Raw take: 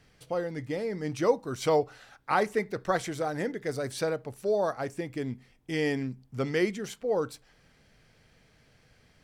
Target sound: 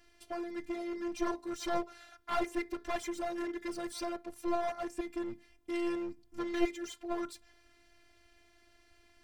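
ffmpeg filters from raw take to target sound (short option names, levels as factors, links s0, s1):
-af "afftfilt=real='hypot(re,im)*cos(PI*b)':imag='0':win_size=512:overlap=0.75,aeval=exprs='clip(val(0),-1,0.0158)':c=same,volume=1.19"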